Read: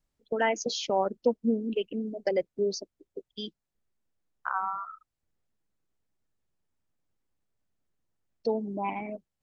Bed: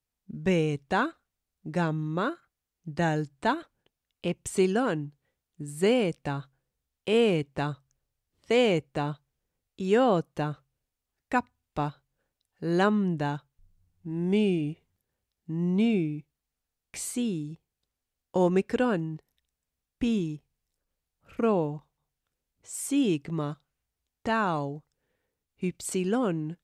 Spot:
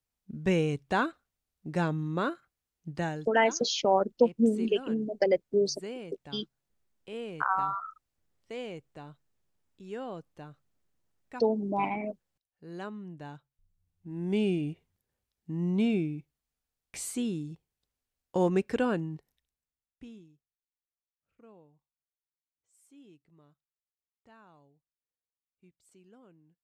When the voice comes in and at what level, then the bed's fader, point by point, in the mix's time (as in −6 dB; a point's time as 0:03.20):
2.95 s, +2.5 dB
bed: 0:02.88 −1.5 dB
0:03.43 −16.5 dB
0:13.02 −16.5 dB
0:14.50 −2.5 dB
0:19.30 −2.5 dB
0:20.47 −30.5 dB